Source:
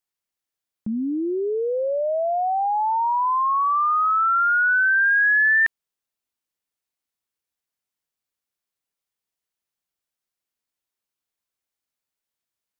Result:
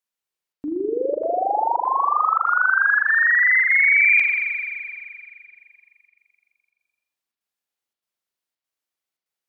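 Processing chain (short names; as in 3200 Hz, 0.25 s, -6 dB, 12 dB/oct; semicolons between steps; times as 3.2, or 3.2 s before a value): low shelf 140 Hz -7 dB; chopper 1.2 Hz, depth 65%, duty 85%; spring tank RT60 3.6 s, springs 54 ms, chirp 20 ms, DRR 1 dB; speed mistake 33 rpm record played at 45 rpm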